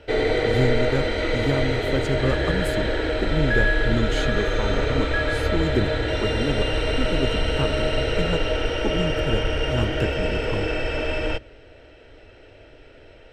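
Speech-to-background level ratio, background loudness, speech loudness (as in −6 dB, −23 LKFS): −5.0 dB, −24.0 LKFS, −29.0 LKFS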